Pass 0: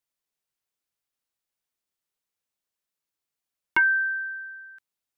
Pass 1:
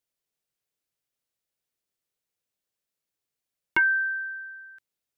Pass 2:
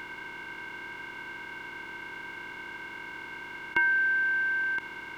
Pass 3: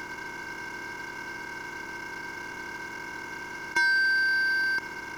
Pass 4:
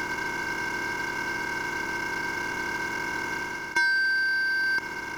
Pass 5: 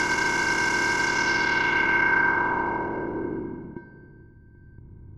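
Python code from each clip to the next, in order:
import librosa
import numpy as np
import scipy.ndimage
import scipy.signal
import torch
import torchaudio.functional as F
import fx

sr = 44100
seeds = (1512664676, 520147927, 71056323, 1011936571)

y1 = fx.graphic_eq_10(x, sr, hz=(125, 500, 1000), db=(4, 4, -4))
y2 = fx.bin_compress(y1, sr, power=0.2)
y2 = y2 * librosa.db_to_amplitude(-4.5)
y3 = scipy.ndimage.median_filter(y2, 15, mode='constant')
y3 = 10.0 ** (-24.5 / 20.0) * np.tanh(y3 / 10.0 ** (-24.5 / 20.0))
y3 = y3 * librosa.db_to_amplitude(5.5)
y4 = fx.rider(y3, sr, range_db=4, speed_s=0.5)
y4 = y4 * librosa.db_to_amplitude(3.5)
y5 = fx.filter_sweep_lowpass(y4, sr, from_hz=8100.0, to_hz=100.0, start_s=0.99, end_s=4.32, q=1.6)
y5 = y5 + 10.0 ** (-23.5 / 20.0) * np.pad(y5, (int(784 * sr / 1000.0), 0))[:len(y5)]
y5 = y5 * librosa.db_to_amplitude(6.5)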